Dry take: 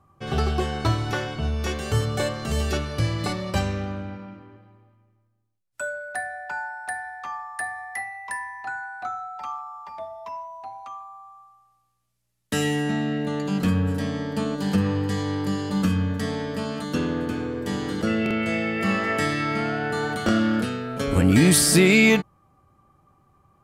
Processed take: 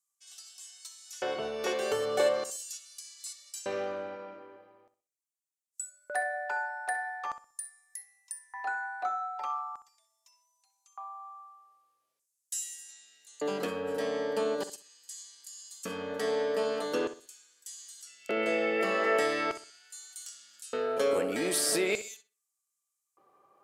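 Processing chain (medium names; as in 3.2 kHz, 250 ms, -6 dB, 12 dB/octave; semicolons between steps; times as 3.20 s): compression 6:1, threshold -21 dBFS, peak gain reduction 9.5 dB; LFO high-pass square 0.41 Hz 470–7200 Hz; filtered feedback delay 63 ms, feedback 29%, low-pass 3.3 kHz, level -12 dB; trim -3.5 dB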